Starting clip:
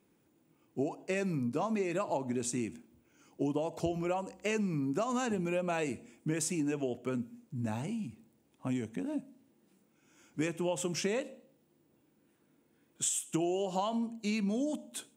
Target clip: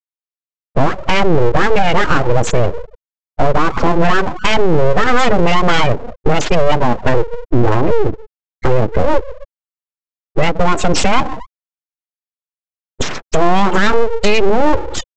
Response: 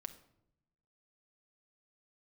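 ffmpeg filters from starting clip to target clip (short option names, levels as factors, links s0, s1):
-filter_complex "[0:a]asplit=2[s0][s1];[s1]adelay=260,highpass=300,lowpass=3400,asoftclip=type=hard:threshold=0.0398,volume=0.0501[s2];[s0][s2]amix=inputs=2:normalize=0,acompressor=threshold=0.0112:ratio=4,afftfilt=real='re*gte(hypot(re,im),0.00891)':imag='im*gte(hypot(re,im),0.00891)':win_size=1024:overlap=0.75,apsyclip=59.6,acrossover=split=6300[s3][s4];[s4]acompressor=threshold=0.0501:ratio=4:attack=1:release=60[s5];[s3][s5]amix=inputs=2:normalize=0,aresample=16000,aeval=exprs='abs(val(0))':c=same,aresample=44100,volume=0.794"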